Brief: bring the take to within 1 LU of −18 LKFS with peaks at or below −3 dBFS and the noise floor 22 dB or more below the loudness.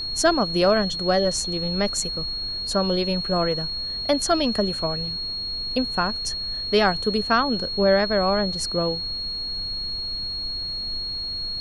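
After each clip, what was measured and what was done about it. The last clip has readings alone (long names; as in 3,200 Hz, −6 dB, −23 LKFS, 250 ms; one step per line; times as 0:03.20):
interfering tone 4,300 Hz; level of the tone −27 dBFS; background noise floor −30 dBFS; target noise floor −45 dBFS; integrated loudness −23.0 LKFS; sample peak −6.5 dBFS; target loudness −18.0 LKFS
→ notch filter 4,300 Hz, Q 30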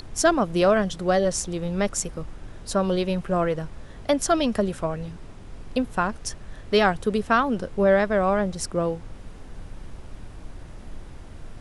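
interfering tone none found; background noise floor −42 dBFS; target noise floor −46 dBFS
→ noise reduction from a noise print 6 dB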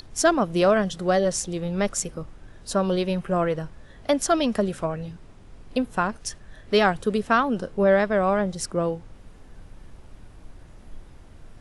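background noise floor −48 dBFS; integrated loudness −24.0 LKFS; sample peak −6.5 dBFS; target loudness −18.0 LKFS
→ level +6 dB
brickwall limiter −3 dBFS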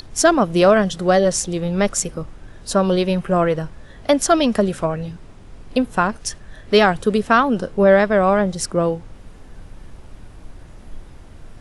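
integrated loudness −18.0 LKFS; sample peak −3.0 dBFS; background noise floor −42 dBFS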